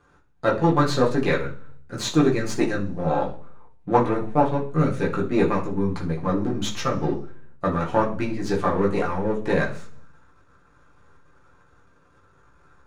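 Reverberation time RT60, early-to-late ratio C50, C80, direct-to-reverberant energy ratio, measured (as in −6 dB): 0.45 s, 10.5 dB, 15.5 dB, −4.0 dB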